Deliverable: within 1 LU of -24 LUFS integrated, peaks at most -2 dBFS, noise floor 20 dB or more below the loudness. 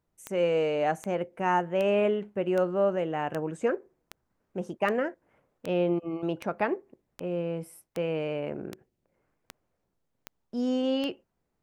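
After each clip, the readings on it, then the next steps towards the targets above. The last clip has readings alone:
clicks found 15; loudness -29.5 LUFS; peak level -13.0 dBFS; loudness target -24.0 LUFS
-> de-click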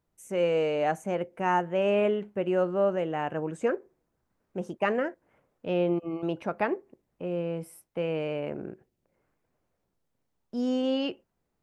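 clicks found 0; loudness -29.5 LUFS; peak level -13.0 dBFS; loudness target -24.0 LUFS
-> trim +5.5 dB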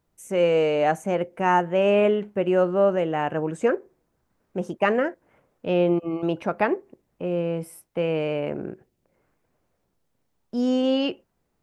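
loudness -24.0 LUFS; peak level -7.5 dBFS; noise floor -73 dBFS

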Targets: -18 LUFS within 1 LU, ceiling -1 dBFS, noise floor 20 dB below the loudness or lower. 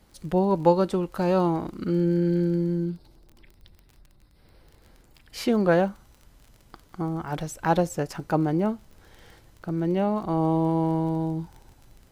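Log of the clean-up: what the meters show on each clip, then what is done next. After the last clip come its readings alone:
tick rate 24 per s; loudness -25.0 LUFS; peak level -6.5 dBFS; loudness target -18.0 LUFS
-> de-click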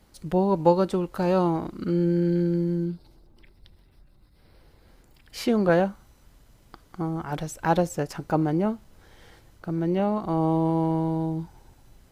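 tick rate 0 per s; loudness -25.0 LUFS; peak level -6.5 dBFS; loudness target -18.0 LUFS
-> trim +7 dB; peak limiter -1 dBFS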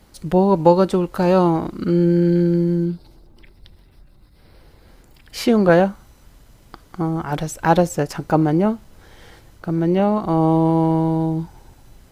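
loudness -18.5 LUFS; peak level -1.0 dBFS; noise floor -51 dBFS

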